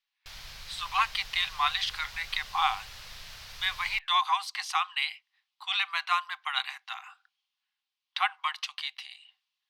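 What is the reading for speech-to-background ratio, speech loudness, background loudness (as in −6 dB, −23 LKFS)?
14.0 dB, −30.0 LKFS, −44.0 LKFS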